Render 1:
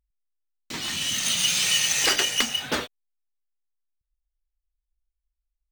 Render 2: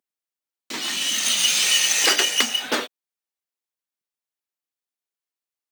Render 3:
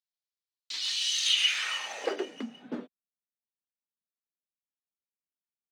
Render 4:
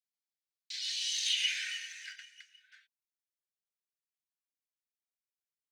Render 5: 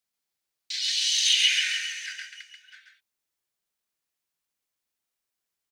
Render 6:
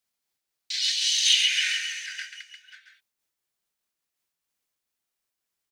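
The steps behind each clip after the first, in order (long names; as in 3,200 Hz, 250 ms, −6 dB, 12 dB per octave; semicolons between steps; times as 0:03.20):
high-pass filter 230 Hz 24 dB per octave; level +3.5 dB
band-pass filter sweep 4,200 Hz → 200 Hz, 0:01.21–0:02.46
Chebyshev high-pass with heavy ripple 1,500 Hz, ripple 3 dB; level −3.5 dB
single-tap delay 136 ms −5 dB; level +9 dB
amplitude modulation by smooth noise, depth 50%; level +4 dB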